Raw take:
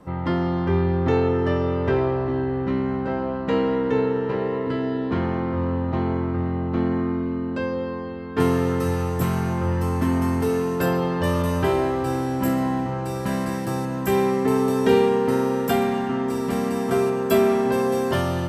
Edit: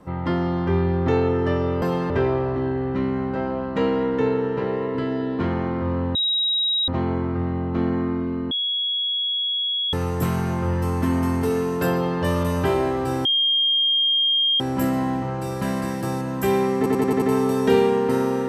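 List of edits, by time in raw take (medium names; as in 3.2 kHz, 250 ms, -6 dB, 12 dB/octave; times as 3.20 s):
5.87 s: add tone 3.82 kHz -18.5 dBFS 0.73 s
7.50–8.92 s: bleep 3.34 kHz -21 dBFS
10.92–11.20 s: copy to 1.82 s
12.24 s: add tone 3.22 kHz -16.5 dBFS 1.35 s
14.41 s: stutter 0.09 s, 6 plays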